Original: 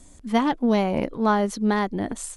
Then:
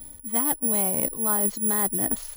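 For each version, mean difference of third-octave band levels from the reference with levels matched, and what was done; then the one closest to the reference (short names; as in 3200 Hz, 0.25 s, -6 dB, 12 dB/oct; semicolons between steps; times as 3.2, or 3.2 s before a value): 7.5 dB: reverse; compressor 6:1, threshold -29 dBFS, peak gain reduction 13 dB; reverse; careless resampling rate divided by 4×, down filtered, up zero stuff; gain +1.5 dB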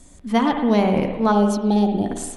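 4.5 dB: spectral gain 1.32–2.06, 930–2300 Hz -25 dB; spring tank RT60 1.1 s, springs 53/58 ms, chirp 60 ms, DRR 4.5 dB; gain +2 dB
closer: second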